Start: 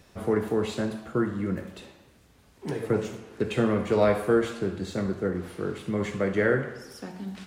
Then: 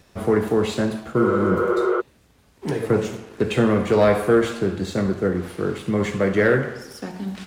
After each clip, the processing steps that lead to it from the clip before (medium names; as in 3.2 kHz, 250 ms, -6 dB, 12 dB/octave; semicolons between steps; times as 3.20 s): waveshaping leveller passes 1; spectral replace 1.22–1.98 s, 350–3500 Hz before; trim +3 dB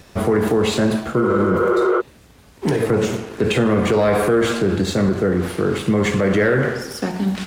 peak limiter -18.5 dBFS, peak gain reduction 11 dB; trim +9 dB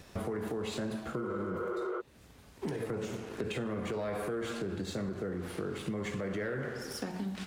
compression 4:1, threshold -27 dBFS, peak gain reduction 12 dB; trim -8 dB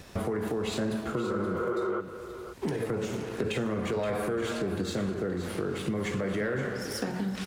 delay 524 ms -11 dB; trim +5 dB